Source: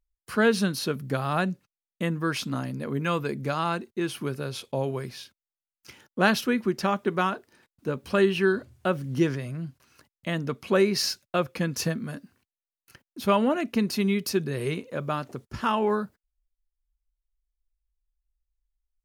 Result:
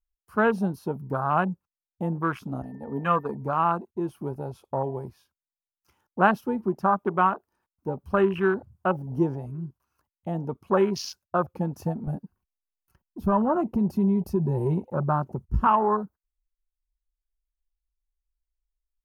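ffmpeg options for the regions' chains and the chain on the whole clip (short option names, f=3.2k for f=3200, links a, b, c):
-filter_complex "[0:a]asettb=1/sr,asplit=3[a][b][c];[a]atrim=end=2.624[d];[b]atrim=start=2.62:end=3.35,asetpts=PTS-STARTPTS,afade=t=in:d=0.004:c=qsin,afade=t=out:st=0.726:d=0.004:c=qsin,agate=range=-33dB:threshold=-29dB:ratio=3:release=100:detection=peak,aecho=1:1:4.2:0.47,atrim=end_sample=32193,aeval=exprs='val(0)+0.01*sin(2*PI*1800*n/s)':c=same[e];[c]atrim=start=3.346[f];[d][e]acrossfade=d=0.004:c1=hsin:c2=qsin[g];[g][f]acrossfade=d=0.004:c1=qsin:c2=hsin,asettb=1/sr,asplit=3[h][i][j];[h]atrim=end=12.074[k];[i]atrim=start=12.07:end=15.67,asetpts=PTS-STARTPTS,afade=t=in:d=0.004:c=qsin,afade=t=out:st=3.596:d=0.004:c=qsin,lowshelf=f=220:g=11.5,aecho=1:1:5.4:0.31,atrim=end_sample=158760,acompressor=threshold=-18dB:ratio=5:attack=3.2:release=140:knee=1:detection=peak[l];[j]atrim=start=15.666[m];[k][l]acrossfade=d=0.004:c1=hsin:c2=qsin[n];[n][m]acrossfade=d=0.004:c1=qsin:c2=hsin,lowshelf=f=340:g=7.5,afwtdn=0.0355,equalizer=f=125:t=o:w=1:g=-12,equalizer=f=250:t=o:w=1:g=-10,equalizer=f=500:t=o:w=1:g=-8,equalizer=f=1k:t=o:w=1:g=6,equalizer=f=2k:t=o:w=1:g=-11,equalizer=f=4k:t=o:w=1:g=-11,equalizer=f=8k:t=o:w=1:g=-7,volume=6dB"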